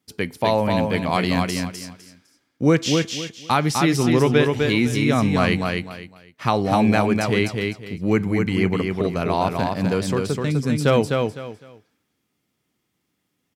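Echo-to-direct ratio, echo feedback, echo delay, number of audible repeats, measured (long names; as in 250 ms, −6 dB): −3.5 dB, 25%, 253 ms, 3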